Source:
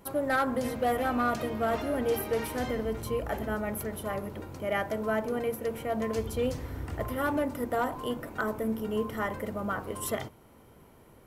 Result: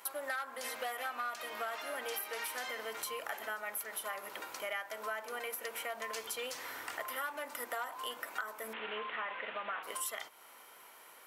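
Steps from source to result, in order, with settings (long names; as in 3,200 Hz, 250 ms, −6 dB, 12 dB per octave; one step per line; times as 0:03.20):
0:08.73–0:09.83: linear delta modulator 16 kbit/s, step −39 dBFS
high-pass filter 1,200 Hz 12 dB per octave
downward compressor 6 to 1, threshold −46 dBFS, peak gain reduction 18 dB
level +9 dB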